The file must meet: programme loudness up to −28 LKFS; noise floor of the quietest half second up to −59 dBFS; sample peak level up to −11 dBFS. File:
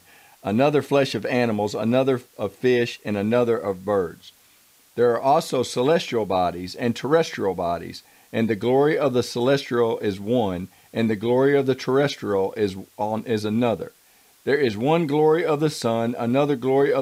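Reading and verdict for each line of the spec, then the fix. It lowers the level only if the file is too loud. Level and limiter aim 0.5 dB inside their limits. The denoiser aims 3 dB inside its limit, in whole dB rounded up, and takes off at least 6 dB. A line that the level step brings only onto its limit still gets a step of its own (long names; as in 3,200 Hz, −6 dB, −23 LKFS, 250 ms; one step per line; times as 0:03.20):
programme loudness −22.5 LKFS: out of spec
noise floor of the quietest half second −56 dBFS: out of spec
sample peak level −6.0 dBFS: out of spec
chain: level −6 dB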